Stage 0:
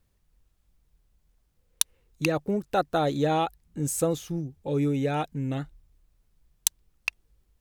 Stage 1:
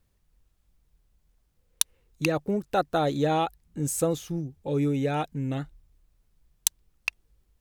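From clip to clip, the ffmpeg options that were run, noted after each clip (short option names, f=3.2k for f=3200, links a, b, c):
-af anull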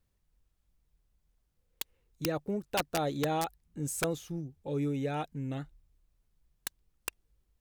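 -af "aeval=exprs='(mod(5.62*val(0)+1,2)-1)/5.62':c=same,volume=-6.5dB"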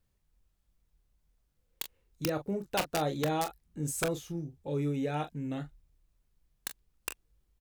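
-af "aecho=1:1:26|41:0.282|0.266"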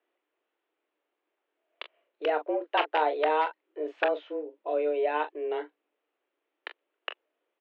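-af "highpass=f=210:t=q:w=0.5412,highpass=f=210:t=q:w=1.307,lowpass=f=3k:t=q:w=0.5176,lowpass=f=3k:t=q:w=0.7071,lowpass=f=3k:t=q:w=1.932,afreqshift=150,volume=6dB"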